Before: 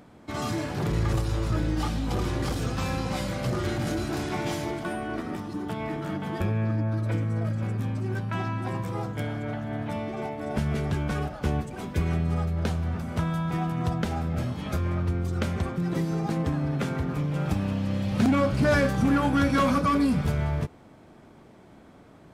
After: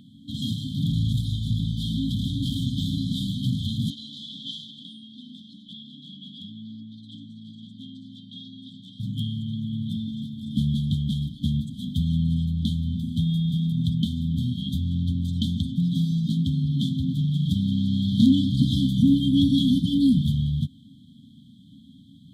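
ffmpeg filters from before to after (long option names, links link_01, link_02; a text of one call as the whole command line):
ffmpeg -i in.wav -filter_complex "[0:a]asettb=1/sr,asplit=3[link_01][link_02][link_03];[link_01]atrim=end=3.904[link_04];[link_02]atrim=start=3.9:end=9,asetpts=PTS-STARTPTS,afade=type=in:duration=0.004:curve=qsin,afade=type=out:start_time=5.096:duration=0.004:curve=qsin,highpass=460,lowpass=4600[link_05];[link_03]atrim=start=8.996[link_06];[link_04][link_05]acrossfade=duration=0.004:curve1=hsin:curve2=qsin[link_07];[link_07][link_06]acrossfade=duration=0.004:curve1=qsin:curve2=hsin,asettb=1/sr,asplit=3[link_08][link_09][link_10];[link_08]atrim=end=14.874[link_11];[link_09]atrim=start=14.87:end=18.65,asetpts=PTS-STARTPTS,afade=type=in:duration=0.004:curve=qsin,afade=type=out:start_time=3.776:duration=0.004:curve=qsin,equalizer=frequency=5300:width=1.3:gain=4[link_12];[link_10]atrim=start=18.646[link_13];[link_11][link_12]acrossfade=duration=0.004:curve1=hsin:curve2=qsin[link_14];[link_14][link_13]acrossfade=duration=0.004:curve1=qsin:curve2=hsin,afftfilt=real='re*(1-between(b*sr/4096,290,3100))':imag='im*(1-between(b*sr/4096,290,3100))':win_size=4096:overlap=0.75,highpass=110,highshelf=frequency=4300:width_type=q:width=3:gain=-7.5,volume=6dB" out.wav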